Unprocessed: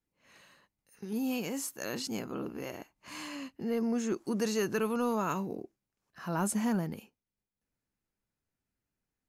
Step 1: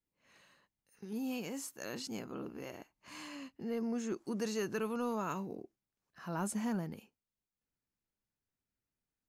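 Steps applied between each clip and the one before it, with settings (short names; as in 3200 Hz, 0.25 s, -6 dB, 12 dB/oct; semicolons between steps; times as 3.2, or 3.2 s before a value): bell 12000 Hz -3.5 dB 0.58 oct; gain -5.5 dB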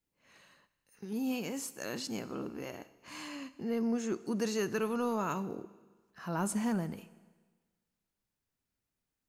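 Schroeder reverb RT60 1.4 s, combs from 27 ms, DRR 16 dB; gain +3.5 dB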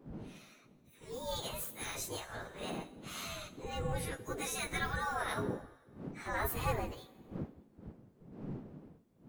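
inharmonic rescaling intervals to 114%; wind noise 98 Hz -44 dBFS; spectral gate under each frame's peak -10 dB weak; gain +7 dB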